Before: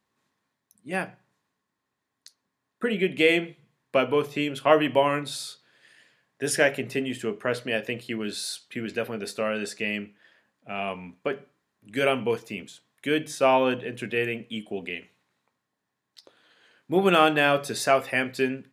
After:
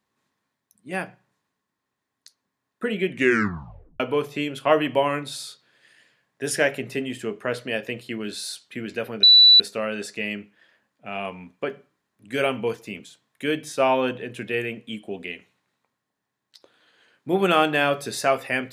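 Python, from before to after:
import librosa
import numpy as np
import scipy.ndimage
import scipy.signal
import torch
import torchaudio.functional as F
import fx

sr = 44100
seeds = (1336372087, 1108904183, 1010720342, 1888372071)

y = fx.edit(x, sr, fx.tape_stop(start_s=3.08, length_s=0.92),
    fx.insert_tone(at_s=9.23, length_s=0.37, hz=3960.0, db=-8.5), tone=tone)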